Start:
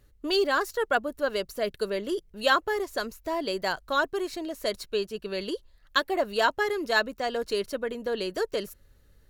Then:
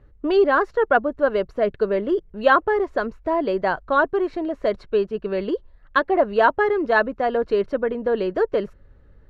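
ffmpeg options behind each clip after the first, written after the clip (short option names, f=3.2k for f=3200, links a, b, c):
-af "lowpass=1.5k,volume=8.5dB"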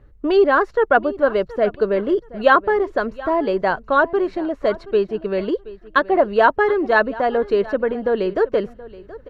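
-af "aecho=1:1:725|1450:0.119|0.025,volume=2.5dB"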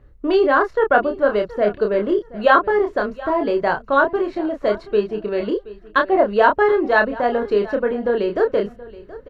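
-filter_complex "[0:a]asplit=2[a][b];[b]adelay=29,volume=-5dB[c];[a][c]amix=inputs=2:normalize=0,volume=-1dB"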